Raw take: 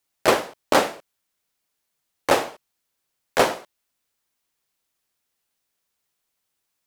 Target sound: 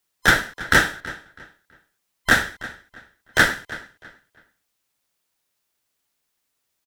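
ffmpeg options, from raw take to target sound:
ffmpeg -i in.wav -filter_complex "[0:a]afftfilt=real='real(if(lt(b,960),b+48*(1-2*mod(floor(b/48),2)),b),0)':imag='imag(if(lt(b,960),b+48*(1-2*mod(floor(b/48),2)),b),0)':win_size=2048:overlap=0.75,asplit=2[link_01][link_02];[link_02]adelay=326,lowpass=frequency=4900:poles=1,volume=-17dB,asplit=2[link_03][link_04];[link_04]adelay=326,lowpass=frequency=4900:poles=1,volume=0.29,asplit=2[link_05][link_06];[link_06]adelay=326,lowpass=frequency=4900:poles=1,volume=0.29[link_07];[link_03][link_05][link_07]amix=inputs=3:normalize=0[link_08];[link_01][link_08]amix=inputs=2:normalize=0,volume=2dB" out.wav

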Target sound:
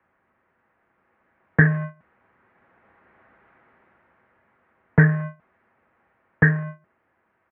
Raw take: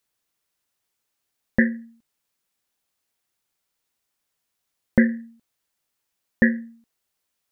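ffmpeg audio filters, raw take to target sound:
ffmpeg -i in.wav -af "aeval=exprs='val(0)+0.5*0.0316*sgn(val(0))':channel_layout=same,agate=range=-26dB:threshold=-32dB:ratio=16:detection=peak,aecho=1:1:6.8:0.33,dynaudnorm=framelen=210:gausssize=13:maxgain=15dB,asoftclip=type=tanh:threshold=-8dB,highpass=frequency=160:width_type=q:width=0.5412,highpass=frequency=160:width_type=q:width=1.307,lowpass=frequency=2000:width_type=q:width=0.5176,lowpass=frequency=2000:width_type=q:width=0.7071,lowpass=frequency=2000:width_type=q:width=1.932,afreqshift=-75,bandreject=frequency=345.6:width_type=h:width=4,bandreject=frequency=691.2:width_type=h:width=4,bandreject=frequency=1036.8:width_type=h:width=4,volume=3dB" out.wav

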